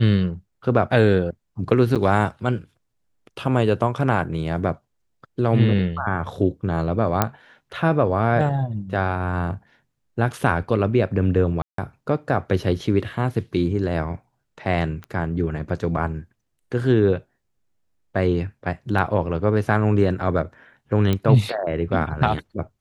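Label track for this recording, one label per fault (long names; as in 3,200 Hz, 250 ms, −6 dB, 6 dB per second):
1.950000	1.960000	drop-out 7.4 ms
7.220000	7.220000	click −3 dBFS
11.620000	11.780000	drop-out 163 ms
15.040000	15.040000	click −23 dBFS
21.130000	21.130000	click −10 dBFS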